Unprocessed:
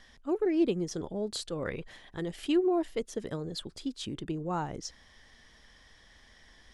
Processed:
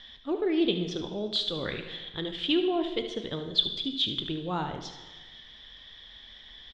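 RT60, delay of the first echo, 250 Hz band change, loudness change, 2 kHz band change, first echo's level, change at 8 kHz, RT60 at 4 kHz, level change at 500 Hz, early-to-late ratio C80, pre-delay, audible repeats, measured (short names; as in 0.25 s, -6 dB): 1.3 s, 74 ms, +1.0 dB, +3.0 dB, +4.5 dB, -12.0 dB, -7.5 dB, 1.2 s, +0.5 dB, 10.5 dB, 7 ms, 1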